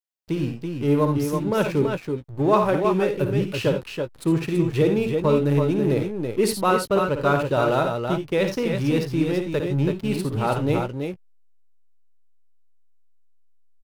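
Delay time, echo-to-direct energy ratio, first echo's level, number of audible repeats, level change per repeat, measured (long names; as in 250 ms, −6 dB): 56 ms, −2.5 dB, −8.5 dB, 3, repeats not evenly spaced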